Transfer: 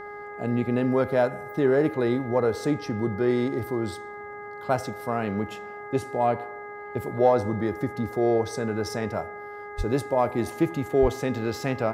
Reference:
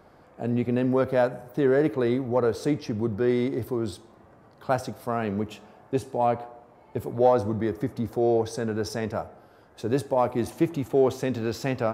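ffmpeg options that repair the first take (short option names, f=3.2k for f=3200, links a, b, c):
-filter_complex "[0:a]bandreject=f=412.5:t=h:w=4,bandreject=f=825:t=h:w=4,bandreject=f=1.2375k:t=h:w=4,bandreject=f=1.65k:t=h:w=4,bandreject=f=2.0625k:t=h:w=4,asplit=3[a][b][c];[a]afade=t=out:st=9.77:d=0.02[d];[b]highpass=f=140:w=0.5412,highpass=f=140:w=1.3066,afade=t=in:st=9.77:d=0.02,afade=t=out:st=9.89:d=0.02[e];[c]afade=t=in:st=9.89:d=0.02[f];[d][e][f]amix=inputs=3:normalize=0,asplit=3[g][h][i];[g]afade=t=out:st=11.01:d=0.02[j];[h]highpass=f=140:w=0.5412,highpass=f=140:w=1.3066,afade=t=in:st=11.01:d=0.02,afade=t=out:st=11.13:d=0.02[k];[i]afade=t=in:st=11.13:d=0.02[l];[j][k][l]amix=inputs=3:normalize=0"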